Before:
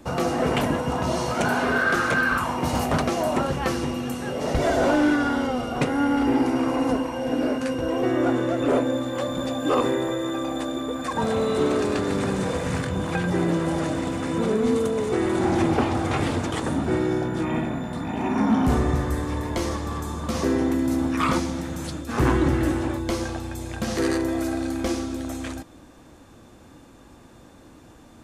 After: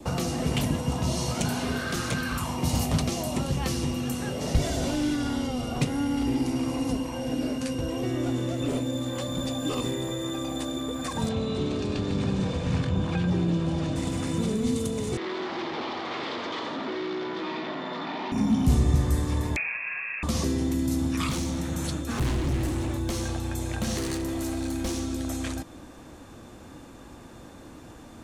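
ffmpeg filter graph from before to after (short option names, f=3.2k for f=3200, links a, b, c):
-filter_complex "[0:a]asettb=1/sr,asplit=3[a][b][c];[a]atrim=end=11.294[d];[b]atrim=start=11.29:end=13.96,asetpts=PTS-STARTPTS,afade=t=in:d=0.004:c=qsin,afade=t=out:st=2.666:d=0.004:c=qsin,lowpass=4k,bandreject=f=2k:w=12[e];[c]atrim=start=13.956[f];[d][e]acrossfade=d=0.004:c1=hsin:c2=qsin[g];[g][f]acrossfade=d=0.004:c1=qsin:c2=hsin,asettb=1/sr,asplit=3[h][i][j];[h]atrim=end=15.174[k];[i]atrim=start=15.17:end=18.32,asetpts=PTS-STARTPTS,afade=t=in:d=0.004:c=qsin,afade=t=out:st=3.146:d=0.004:c=qsin,asplit=2[l][m];[m]highpass=f=720:p=1,volume=27dB,asoftclip=type=tanh:threshold=-13dB[n];[l][n]amix=inputs=2:normalize=0,lowpass=f=1k:p=1,volume=-6dB,highpass=480,equalizer=f=530:t=q:w=4:g=-4,equalizer=f=760:t=q:w=4:g=-7,equalizer=f=2.6k:t=q:w=4:g=-5,lowpass=f=4.5k:w=0.5412,lowpass=f=4.5k:w=1.3066,aecho=1:1:86:0.501,atrim=end_sample=138915[o];[j]atrim=start=18.316[p];[k][o]acrossfade=d=0.004:c1=hsin:c2=qsin[q];[q][p]acrossfade=d=0.004:c1=qsin:c2=hsin,asettb=1/sr,asplit=3[r][s][t];[r]atrim=end=19.564[u];[s]atrim=start=19.56:end=20.23,asetpts=PTS-STARTPTS,afade=t=in:d=0.004:c=qsin,afade=t=out:st=0.666:d=0.004:c=qsin,highpass=180,lowpass=f=2.4k:t=q:w=0.5098,lowpass=f=2.4k:t=q:w=0.6013,lowpass=f=2.4k:t=q:w=0.9,lowpass=f=2.4k:t=q:w=2.563,afreqshift=-2800[v];[t]atrim=start=20.226[w];[u][v]acrossfade=d=0.004:c1=hsin:c2=qsin[x];[x][w]acrossfade=d=0.004:c1=qsin:c2=hsin,asettb=1/sr,asplit=3[y][z][aa];[y]atrim=end=21.294[ab];[z]atrim=start=21.29:end=25.13,asetpts=PTS-STARTPTS,afade=t=in:d=0.004:c=qsin,afade=t=out:st=3.836:d=0.004:c=qsin,bandreject=f=4.9k:w=12,asoftclip=type=hard:threshold=-23.5dB[ac];[aa]atrim=start=25.126[ad];[ab][ac]acrossfade=d=0.004:c1=hsin:c2=qsin[ae];[ae][ad]acrossfade=d=0.004:c1=qsin:c2=hsin,adynamicequalizer=threshold=0.00794:dfrequency=1500:dqfactor=3.2:tfrequency=1500:tqfactor=3.2:attack=5:release=100:ratio=0.375:range=3:mode=cutabove:tftype=bell,acrossover=split=210|3000[af][ag][ah];[ag]acompressor=threshold=-36dB:ratio=6[ai];[af][ai][ah]amix=inputs=3:normalize=0,volume=3dB"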